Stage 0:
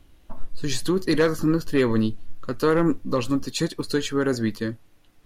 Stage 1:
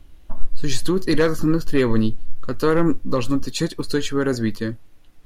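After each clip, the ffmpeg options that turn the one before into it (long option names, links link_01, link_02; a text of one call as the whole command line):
ffmpeg -i in.wav -af "lowshelf=frequency=61:gain=9.5,volume=1.5dB" out.wav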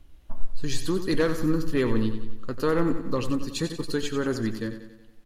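ffmpeg -i in.wav -af "aecho=1:1:92|184|276|368|460|552:0.316|0.171|0.0922|0.0498|0.0269|0.0145,volume=-6dB" out.wav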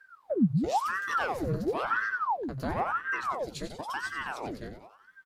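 ffmpeg -i in.wav -filter_complex "[0:a]asplit=2[link_01][link_02];[link_02]adelay=16,volume=-10.5dB[link_03];[link_01][link_03]amix=inputs=2:normalize=0,aeval=exprs='val(0)*sin(2*PI*860*n/s+860*0.85/0.97*sin(2*PI*0.97*n/s))':channel_layout=same,volume=-6.5dB" out.wav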